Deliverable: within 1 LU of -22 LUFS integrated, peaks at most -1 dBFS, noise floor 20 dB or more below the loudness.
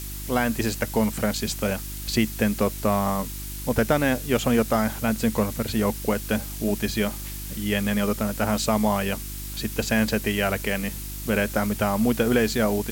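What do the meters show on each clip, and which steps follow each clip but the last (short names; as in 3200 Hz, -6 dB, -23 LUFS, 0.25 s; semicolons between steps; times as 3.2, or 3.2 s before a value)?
hum 50 Hz; harmonics up to 350 Hz; hum level -33 dBFS; noise floor -34 dBFS; noise floor target -45 dBFS; loudness -24.5 LUFS; peak -8.5 dBFS; loudness target -22.0 LUFS
-> de-hum 50 Hz, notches 7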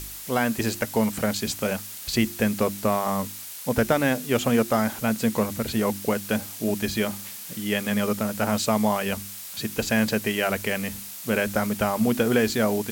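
hum none; noise floor -38 dBFS; noise floor target -45 dBFS
-> denoiser 7 dB, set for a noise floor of -38 dBFS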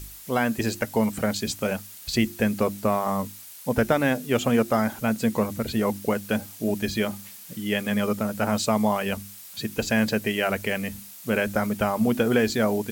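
noise floor -44 dBFS; noise floor target -46 dBFS
-> denoiser 6 dB, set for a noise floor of -44 dBFS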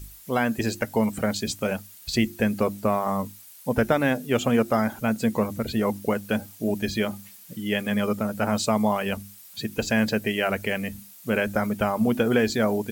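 noise floor -48 dBFS; loudness -25.5 LUFS; peak -9.0 dBFS; loudness target -22.0 LUFS
-> gain +3.5 dB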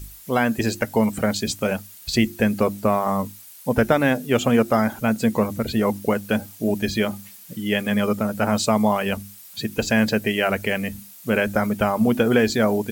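loudness -22.0 LUFS; peak -5.5 dBFS; noise floor -44 dBFS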